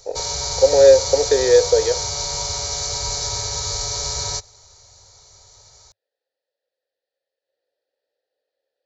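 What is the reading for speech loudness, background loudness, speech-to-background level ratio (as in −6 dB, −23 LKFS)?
−15.5 LKFS, −23.0 LKFS, 7.5 dB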